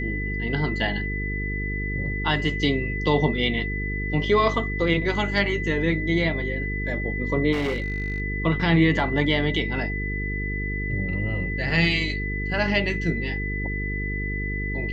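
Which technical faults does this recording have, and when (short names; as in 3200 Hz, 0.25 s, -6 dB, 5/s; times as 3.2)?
buzz 50 Hz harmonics 9 -29 dBFS
tone 2000 Hz -30 dBFS
7.52–8.2 clipped -21.5 dBFS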